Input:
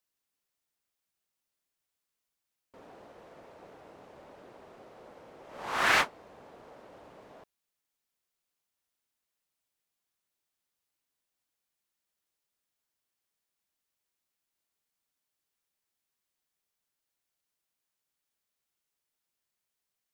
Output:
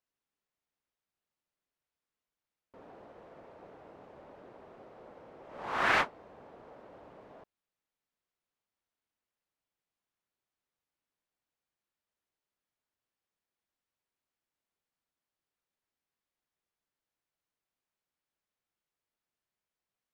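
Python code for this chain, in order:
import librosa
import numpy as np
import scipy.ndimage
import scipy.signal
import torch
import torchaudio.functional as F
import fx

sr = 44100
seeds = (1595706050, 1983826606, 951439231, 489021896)

y = fx.lowpass(x, sr, hz=1900.0, slope=6)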